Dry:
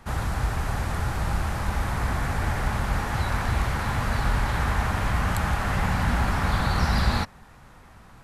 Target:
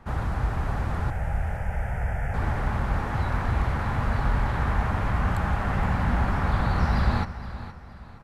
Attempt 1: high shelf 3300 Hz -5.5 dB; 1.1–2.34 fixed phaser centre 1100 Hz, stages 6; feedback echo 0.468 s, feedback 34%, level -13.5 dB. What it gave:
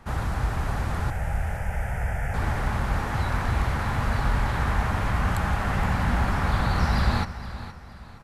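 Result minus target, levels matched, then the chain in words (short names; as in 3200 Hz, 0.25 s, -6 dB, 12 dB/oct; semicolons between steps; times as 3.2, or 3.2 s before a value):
8000 Hz band +8.0 dB
high shelf 3300 Hz -15.5 dB; 1.1–2.34 fixed phaser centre 1100 Hz, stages 6; feedback echo 0.468 s, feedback 34%, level -13.5 dB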